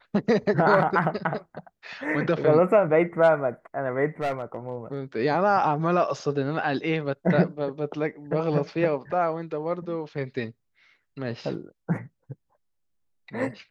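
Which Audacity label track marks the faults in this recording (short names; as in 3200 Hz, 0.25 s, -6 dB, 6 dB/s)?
4.210000	4.980000	clipped -22.5 dBFS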